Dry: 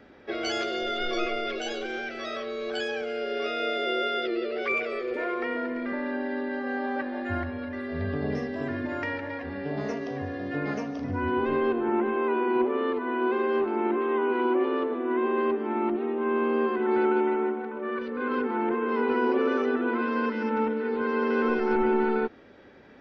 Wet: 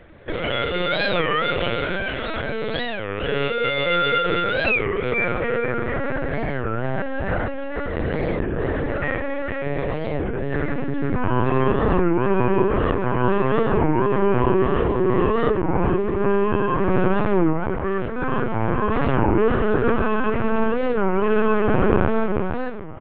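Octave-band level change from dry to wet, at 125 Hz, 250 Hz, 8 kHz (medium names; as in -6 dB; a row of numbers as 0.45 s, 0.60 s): +16.0 dB, +5.0 dB, no reading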